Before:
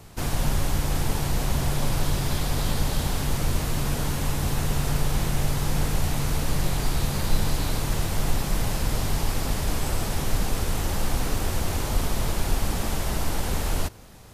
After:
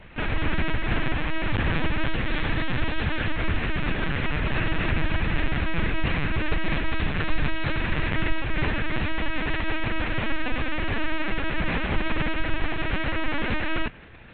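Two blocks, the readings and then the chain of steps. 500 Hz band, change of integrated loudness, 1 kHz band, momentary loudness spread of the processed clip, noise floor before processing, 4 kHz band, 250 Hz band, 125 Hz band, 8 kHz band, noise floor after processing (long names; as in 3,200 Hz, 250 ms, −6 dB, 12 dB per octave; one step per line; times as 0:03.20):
+0.5 dB, 0.0 dB, +0.5 dB, 2 LU, −30 dBFS, −1.0 dB, +1.5 dB, −3.0 dB, below −40 dB, −29 dBFS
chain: flat-topped bell 2,000 Hz +9 dB 1.1 octaves
linear-prediction vocoder at 8 kHz pitch kept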